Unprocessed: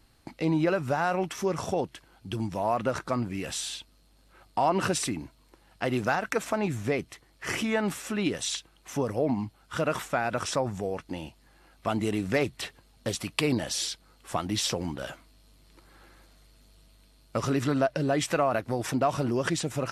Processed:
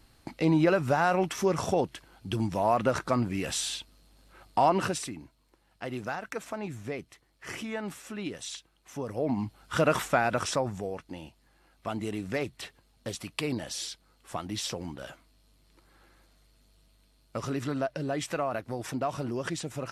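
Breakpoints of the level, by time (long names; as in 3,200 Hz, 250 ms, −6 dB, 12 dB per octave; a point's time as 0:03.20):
0:04.65 +2 dB
0:05.11 −8 dB
0:08.96 −8 dB
0:09.60 +3.5 dB
0:10.11 +3.5 dB
0:11.11 −5.5 dB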